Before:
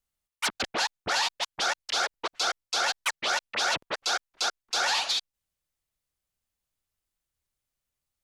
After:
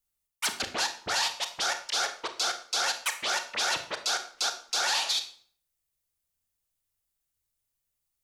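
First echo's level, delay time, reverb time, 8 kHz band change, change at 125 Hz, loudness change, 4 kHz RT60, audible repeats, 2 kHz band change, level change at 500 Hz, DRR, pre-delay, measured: no echo, no echo, 0.50 s, +2.0 dB, no reading, -0.5 dB, 0.45 s, no echo, -2.0 dB, -2.5 dB, 7.0 dB, 25 ms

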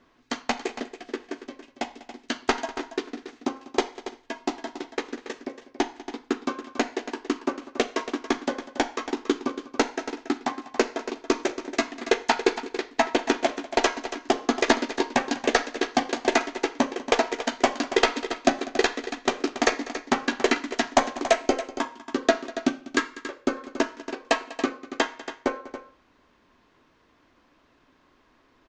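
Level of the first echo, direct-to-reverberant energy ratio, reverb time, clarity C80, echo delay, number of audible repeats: -18.5 dB, no reverb, no reverb, no reverb, 196 ms, 2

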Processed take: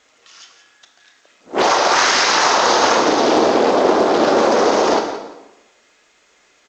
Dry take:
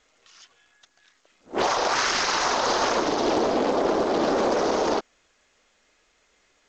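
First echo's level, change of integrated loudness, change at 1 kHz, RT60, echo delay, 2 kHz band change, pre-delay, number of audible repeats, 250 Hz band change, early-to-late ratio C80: -13.0 dB, +9.0 dB, +9.5 dB, 0.95 s, 172 ms, +9.5 dB, 19 ms, 2, +7.5 dB, 8.0 dB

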